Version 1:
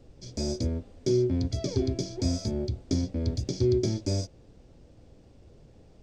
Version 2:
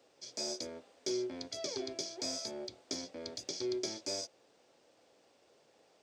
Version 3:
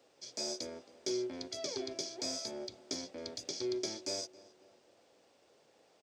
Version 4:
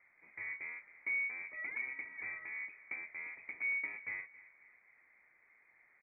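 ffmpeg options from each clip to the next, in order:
ffmpeg -i in.wav -af "highpass=680" out.wav
ffmpeg -i in.wav -filter_complex "[0:a]asplit=2[link_01][link_02];[link_02]adelay=271,lowpass=frequency=2600:poles=1,volume=-19dB,asplit=2[link_03][link_04];[link_04]adelay=271,lowpass=frequency=2600:poles=1,volume=0.46,asplit=2[link_05][link_06];[link_06]adelay=271,lowpass=frequency=2600:poles=1,volume=0.46,asplit=2[link_07][link_08];[link_08]adelay=271,lowpass=frequency=2600:poles=1,volume=0.46[link_09];[link_01][link_03][link_05][link_07][link_09]amix=inputs=5:normalize=0" out.wav
ffmpeg -i in.wav -af "lowpass=frequency=2200:width_type=q:width=0.5098,lowpass=frequency=2200:width_type=q:width=0.6013,lowpass=frequency=2200:width_type=q:width=0.9,lowpass=frequency=2200:width_type=q:width=2.563,afreqshift=-2600" out.wav

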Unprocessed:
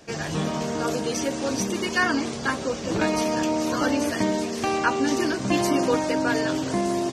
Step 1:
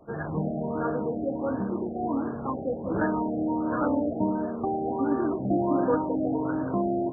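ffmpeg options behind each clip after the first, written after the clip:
ffmpeg -i in.wav -filter_complex "[0:a]bandreject=frequency=56.36:width_type=h:width=4,bandreject=frequency=112.72:width_type=h:width=4,bandreject=frequency=169.08:width_type=h:width=4,bandreject=frequency=225.44:width_type=h:width=4,bandreject=frequency=281.8:width_type=h:width=4,bandreject=frequency=338.16:width_type=h:width=4,bandreject=frequency=394.52:width_type=h:width=4,bandreject=frequency=450.88:width_type=h:width=4,bandreject=frequency=507.24:width_type=h:width=4,bandreject=frequency=563.6:width_type=h:width=4,bandreject=frequency=619.96:width_type=h:width=4,bandreject=frequency=676.32:width_type=h:width=4,bandreject=frequency=732.68:width_type=h:width=4,bandreject=frequency=789.04:width_type=h:width=4,bandreject=frequency=845.4:width_type=h:width=4,bandreject=frequency=901.76:width_type=h:width=4,bandreject=frequency=958.12:width_type=h:width=4,bandreject=frequency=1014.48:width_type=h:width=4,bandreject=frequency=1070.84:width_type=h:width=4,bandreject=frequency=1127.2:width_type=h:width=4,bandreject=frequency=1183.56:width_type=h:width=4,bandreject=frequency=1239.92:width_type=h:width=4,bandreject=frequency=1296.28:width_type=h:width=4,bandreject=frequency=1352.64:width_type=h:width=4,bandreject=frequency=1409:width_type=h:width=4,bandreject=frequency=1465.36:width_type=h:width=4,bandreject=frequency=1521.72:width_type=h:width=4,bandreject=frequency=1578.08:width_type=h:width=4,bandreject=frequency=1634.44:width_type=h:width=4,bandreject=frequency=1690.8:width_type=h:width=4,bandreject=frequency=1747.16:width_type=h:width=4,bandreject=frequency=1803.52:width_type=h:width=4,bandreject=frequency=1859.88:width_type=h:width=4,bandreject=frequency=1916.24:width_type=h:width=4,bandreject=frequency=1972.6:width_type=h:width=4,bandreject=frequency=2028.96:width_type=h:width=4,acrossover=split=6200[link_01][link_02];[link_02]acompressor=threshold=-54dB:ratio=4:attack=1:release=60[link_03];[link_01][link_03]amix=inputs=2:normalize=0,afftfilt=real='re*lt(b*sr/1024,790*pow(1800/790,0.5+0.5*sin(2*PI*1.4*pts/sr)))':imag='im*lt(b*sr/1024,790*pow(1800/790,0.5+0.5*sin(2*PI*1.4*pts/sr)))':win_size=1024:overlap=0.75,volume=-1.5dB" out.wav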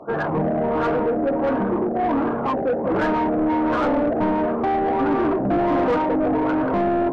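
ffmpeg -i in.wav -filter_complex "[0:a]asplit=2[link_01][link_02];[link_02]highpass=frequency=720:poles=1,volume=26dB,asoftclip=type=tanh:threshold=-11.5dB[link_03];[link_01][link_03]amix=inputs=2:normalize=0,lowpass=frequency=1100:poles=1,volume=-6dB" out.wav

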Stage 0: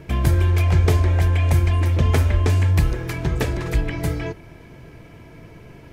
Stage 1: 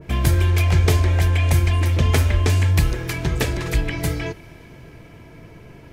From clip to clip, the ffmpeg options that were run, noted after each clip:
ffmpeg -i in.wav -af "adynamicequalizer=threshold=0.00708:dfrequency=1900:dqfactor=0.7:tfrequency=1900:tqfactor=0.7:attack=5:release=100:ratio=0.375:range=3:mode=boostabove:tftype=highshelf" out.wav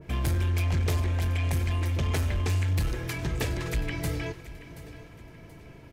ffmpeg -i in.wav -af "asoftclip=type=tanh:threshold=-15dB,aecho=1:1:729|1458|2187:0.158|0.0602|0.0229,volume=-6dB" out.wav

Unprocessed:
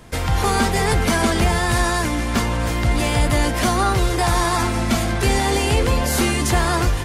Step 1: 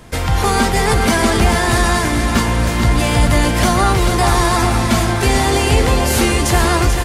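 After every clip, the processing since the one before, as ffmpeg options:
ffmpeg -i in.wav -af "aecho=1:1:439|878|1317|1756|2195|2634|3073:0.422|0.228|0.123|0.0664|0.0359|0.0194|0.0105,volume=3.5dB" out.wav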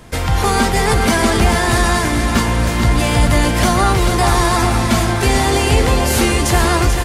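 ffmpeg -i in.wav -af anull out.wav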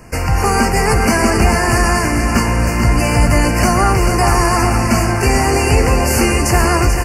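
ffmpeg -i in.wav -af "asuperstop=centerf=3600:order=20:qfactor=2.5,volume=1dB" out.wav

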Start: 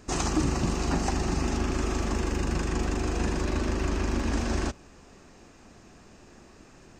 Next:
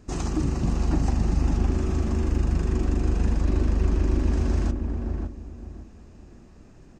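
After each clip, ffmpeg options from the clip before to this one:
ffmpeg -i in.wav -filter_complex "[0:a]lowshelf=frequency=380:gain=11,asplit=2[link_01][link_02];[link_02]adelay=562,lowpass=frequency=970:poles=1,volume=-3dB,asplit=2[link_03][link_04];[link_04]adelay=562,lowpass=frequency=970:poles=1,volume=0.29,asplit=2[link_05][link_06];[link_06]adelay=562,lowpass=frequency=970:poles=1,volume=0.29,asplit=2[link_07][link_08];[link_08]adelay=562,lowpass=frequency=970:poles=1,volume=0.29[link_09];[link_01][link_03][link_05][link_07][link_09]amix=inputs=5:normalize=0,volume=-7.5dB" out.wav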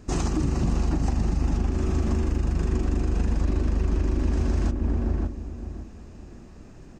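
ffmpeg -i in.wav -af "alimiter=limit=-19dB:level=0:latency=1:release=179,volume=4dB" out.wav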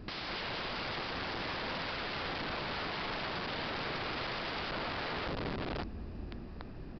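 ffmpeg -i in.wav -af "aeval=exprs='(mod(39.8*val(0)+1,2)-1)/39.8':channel_layout=same,aresample=11025,aresample=44100" out.wav

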